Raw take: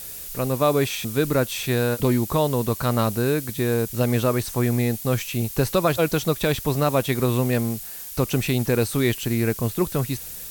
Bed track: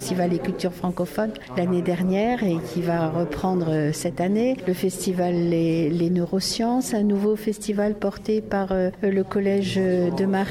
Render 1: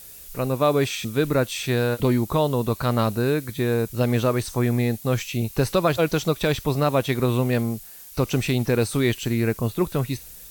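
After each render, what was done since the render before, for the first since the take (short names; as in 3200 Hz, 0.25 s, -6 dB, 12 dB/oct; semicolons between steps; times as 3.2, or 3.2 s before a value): noise print and reduce 7 dB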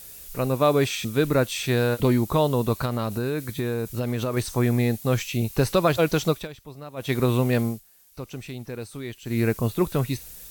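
2.85–4.37 compressor, threshold -21 dBFS; 6.3–7.14 dip -18.5 dB, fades 0.18 s; 7.67–9.39 dip -13.5 dB, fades 0.15 s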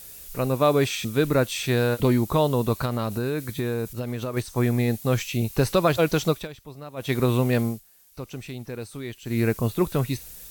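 3.93–4.88 upward expander, over -32 dBFS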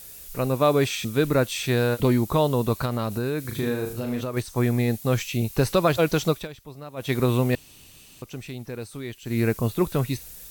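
3.41–4.21 flutter echo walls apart 6.4 m, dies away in 0.45 s; 7.55–8.22 room tone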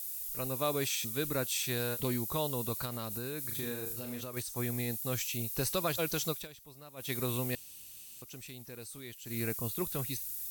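pre-emphasis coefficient 0.8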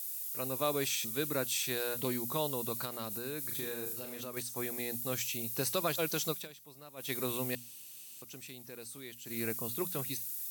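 HPF 150 Hz 12 dB/oct; notches 60/120/180/240 Hz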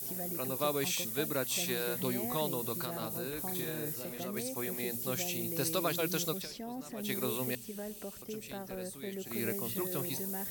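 add bed track -20 dB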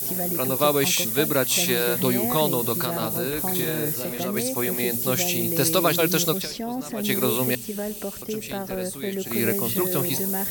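gain +12 dB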